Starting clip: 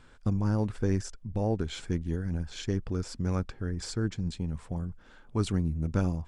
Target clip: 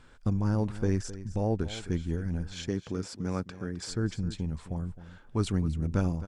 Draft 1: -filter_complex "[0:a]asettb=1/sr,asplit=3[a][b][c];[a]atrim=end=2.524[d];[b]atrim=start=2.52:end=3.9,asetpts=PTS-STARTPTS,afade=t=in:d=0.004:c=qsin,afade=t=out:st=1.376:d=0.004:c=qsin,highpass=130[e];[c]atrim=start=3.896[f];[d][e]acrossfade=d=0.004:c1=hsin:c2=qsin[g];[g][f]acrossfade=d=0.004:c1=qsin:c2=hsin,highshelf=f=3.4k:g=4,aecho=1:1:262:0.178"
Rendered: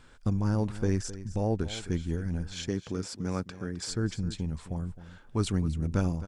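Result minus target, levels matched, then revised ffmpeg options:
8000 Hz band +3.0 dB
-filter_complex "[0:a]asettb=1/sr,asplit=3[a][b][c];[a]atrim=end=2.524[d];[b]atrim=start=2.52:end=3.9,asetpts=PTS-STARTPTS,afade=t=in:d=0.004:c=qsin,afade=t=out:st=1.376:d=0.004:c=qsin,highpass=130[e];[c]atrim=start=3.896[f];[d][e]acrossfade=d=0.004:c1=hsin:c2=qsin[g];[g][f]acrossfade=d=0.004:c1=qsin:c2=hsin,aecho=1:1:262:0.178"

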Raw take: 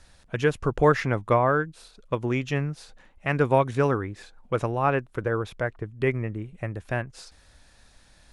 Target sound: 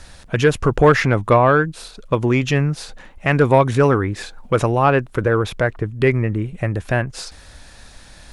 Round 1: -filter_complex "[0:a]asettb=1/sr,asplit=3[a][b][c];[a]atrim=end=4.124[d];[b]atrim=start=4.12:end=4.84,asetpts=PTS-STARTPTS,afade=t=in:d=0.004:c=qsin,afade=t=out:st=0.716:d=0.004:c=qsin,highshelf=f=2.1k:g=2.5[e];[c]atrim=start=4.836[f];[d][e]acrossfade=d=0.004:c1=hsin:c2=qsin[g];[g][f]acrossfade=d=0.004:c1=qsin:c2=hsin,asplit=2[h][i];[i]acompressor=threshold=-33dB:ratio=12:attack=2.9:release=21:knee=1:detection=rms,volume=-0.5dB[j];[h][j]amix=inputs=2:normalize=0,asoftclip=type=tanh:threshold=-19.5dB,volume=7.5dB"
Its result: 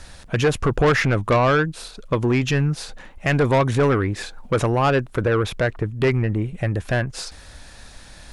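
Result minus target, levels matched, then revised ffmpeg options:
soft clip: distortion +12 dB
-filter_complex "[0:a]asettb=1/sr,asplit=3[a][b][c];[a]atrim=end=4.124[d];[b]atrim=start=4.12:end=4.84,asetpts=PTS-STARTPTS,afade=t=in:d=0.004:c=qsin,afade=t=out:st=0.716:d=0.004:c=qsin,highshelf=f=2.1k:g=2.5[e];[c]atrim=start=4.836[f];[d][e]acrossfade=d=0.004:c1=hsin:c2=qsin[g];[g][f]acrossfade=d=0.004:c1=qsin:c2=hsin,asplit=2[h][i];[i]acompressor=threshold=-33dB:ratio=12:attack=2.9:release=21:knee=1:detection=rms,volume=-0.5dB[j];[h][j]amix=inputs=2:normalize=0,asoftclip=type=tanh:threshold=-9.5dB,volume=7.5dB"

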